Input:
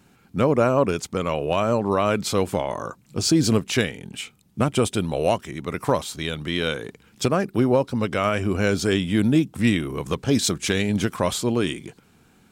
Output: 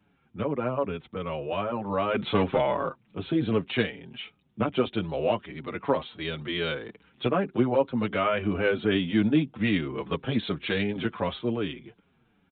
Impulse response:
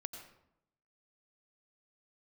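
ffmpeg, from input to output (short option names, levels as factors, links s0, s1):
-filter_complex "[0:a]acrossover=split=180[s0][s1];[s1]dynaudnorm=f=370:g=9:m=3.76[s2];[s0][s2]amix=inputs=2:normalize=0,asettb=1/sr,asplit=3[s3][s4][s5];[s3]atrim=end=2.144[s6];[s4]atrim=start=2.14:end=2.89,asetpts=PTS-STARTPTS,afade=t=in:d=0.004:c=qsin,afade=t=out:st=0.746:d=0.004:c=qsin,aeval=exprs='0.631*sin(PI/2*1.41*val(0)/0.631)':c=same[s7];[s5]atrim=start=2.886[s8];[s6][s7]acrossfade=d=0.004:c1=hsin:c2=qsin[s9];[s9][s8]acrossfade=d=0.004:c1=qsin:c2=hsin,aresample=8000,aresample=44100,asplit=2[s10][s11];[s11]adelay=6.4,afreqshift=-2.6[s12];[s10][s12]amix=inputs=2:normalize=1,volume=0.447"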